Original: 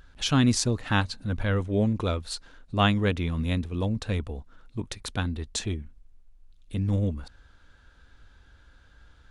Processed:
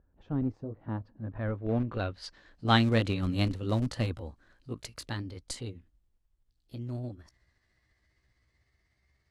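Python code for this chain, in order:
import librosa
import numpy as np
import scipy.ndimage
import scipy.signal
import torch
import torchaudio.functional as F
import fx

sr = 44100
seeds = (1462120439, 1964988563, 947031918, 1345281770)

p1 = fx.pitch_glide(x, sr, semitones=5.5, runs='starting unshifted')
p2 = fx.doppler_pass(p1, sr, speed_mps=14, closest_m=15.0, pass_at_s=3.34)
p3 = fx.highpass(p2, sr, hz=58.0, slope=6)
p4 = fx.schmitt(p3, sr, flips_db=-25.0)
p5 = p3 + F.gain(torch.from_numpy(p4), -7.0).numpy()
y = fx.filter_sweep_lowpass(p5, sr, from_hz=650.0, to_hz=9900.0, start_s=0.94, end_s=2.89, q=0.85)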